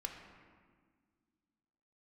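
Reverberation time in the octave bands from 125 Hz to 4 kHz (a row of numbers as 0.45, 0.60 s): 2.2, 2.7, 1.9, 1.6, 1.5, 1.1 s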